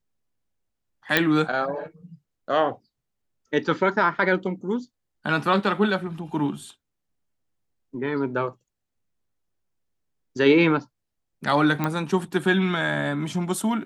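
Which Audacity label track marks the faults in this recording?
1.170000	1.170000	pop -4 dBFS
11.840000	11.840000	pop -11 dBFS

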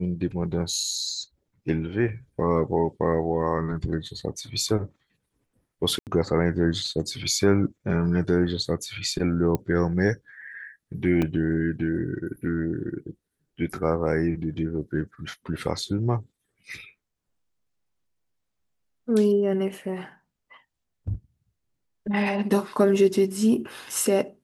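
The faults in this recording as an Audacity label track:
5.990000	6.070000	dropout 78 ms
9.550000	9.550000	pop -13 dBFS
11.220000	11.220000	dropout 4 ms

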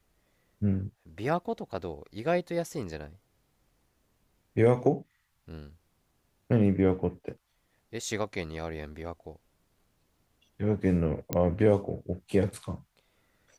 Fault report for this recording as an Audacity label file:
11.330000	11.330000	pop -13 dBFS

